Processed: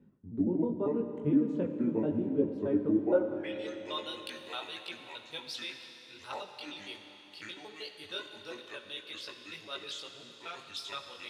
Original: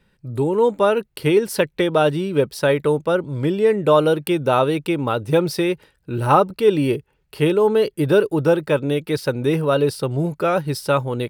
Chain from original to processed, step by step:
pitch shifter gated in a rhythm −6 semitones, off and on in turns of 78 ms
multi-voice chorus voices 2, 0.41 Hz, delay 20 ms, depth 2.6 ms
reversed playback
upward compression, threshold −21 dBFS
reversed playback
band-pass filter sweep 250 Hz → 3,800 Hz, 0:02.92–0:03.60
four-comb reverb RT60 3.8 s, combs from 30 ms, DRR 6.5 dB
level −1.5 dB

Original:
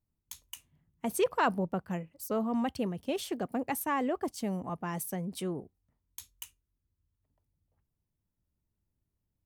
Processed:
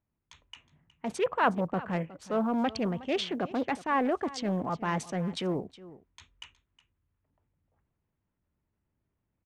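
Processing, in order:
adaptive Wiener filter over 9 samples
low-pass that shuts in the quiet parts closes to 2,700 Hz, open at −28 dBFS
meter weighting curve ITU-R 468
treble cut that deepens with the level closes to 2,800 Hz, closed at −28.5 dBFS
spectral tilt −4 dB per octave
transient designer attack −6 dB, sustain +3 dB
in parallel at +1.5 dB: speech leveller 0.5 s
on the sum: floating-point word with a short mantissa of 6 bits
on a send: single-tap delay 365 ms −18 dB
on the sum: highs frequency-modulated by the lows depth 0.18 ms

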